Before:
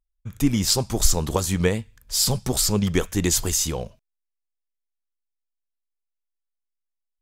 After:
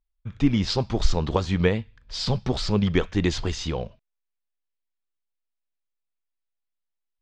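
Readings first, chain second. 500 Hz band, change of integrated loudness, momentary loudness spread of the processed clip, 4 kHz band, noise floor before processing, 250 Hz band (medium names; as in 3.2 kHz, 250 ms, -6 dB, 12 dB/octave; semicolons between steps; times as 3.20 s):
0.0 dB, -3.0 dB, 9 LU, -4.5 dB, -81 dBFS, 0.0 dB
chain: low-pass 4.2 kHz 24 dB/octave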